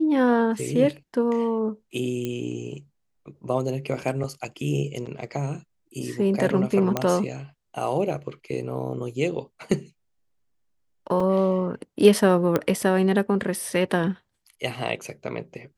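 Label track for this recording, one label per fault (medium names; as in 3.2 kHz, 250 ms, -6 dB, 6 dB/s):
2.250000	2.250000	pop -16 dBFS
6.970000	6.970000	pop -9 dBFS
11.200000	11.200000	dropout 3.9 ms
12.560000	12.560000	pop -9 dBFS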